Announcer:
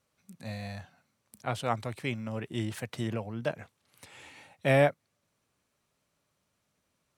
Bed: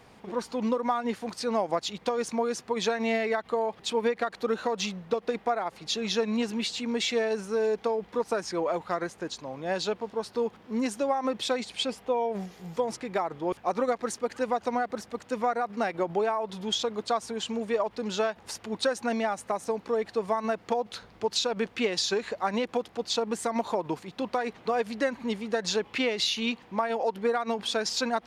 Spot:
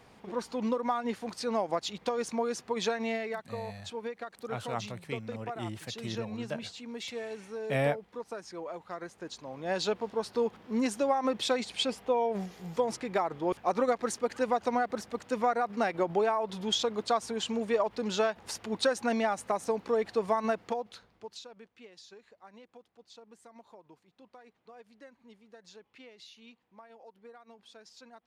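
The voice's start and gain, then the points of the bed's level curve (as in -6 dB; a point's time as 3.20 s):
3.05 s, -5.5 dB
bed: 2.91 s -3 dB
3.56 s -11.5 dB
8.83 s -11.5 dB
9.86 s -0.5 dB
20.50 s -0.5 dB
21.70 s -25 dB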